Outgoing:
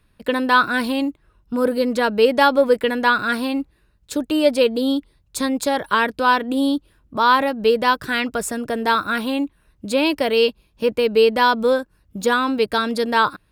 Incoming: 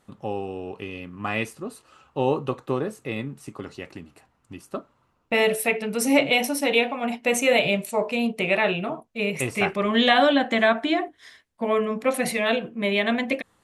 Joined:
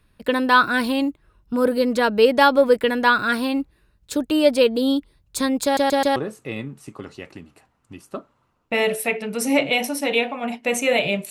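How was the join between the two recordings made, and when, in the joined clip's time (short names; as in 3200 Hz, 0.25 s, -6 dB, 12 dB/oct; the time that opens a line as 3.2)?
outgoing
5.64 stutter in place 0.13 s, 4 plays
6.16 switch to incoming from 2.76 s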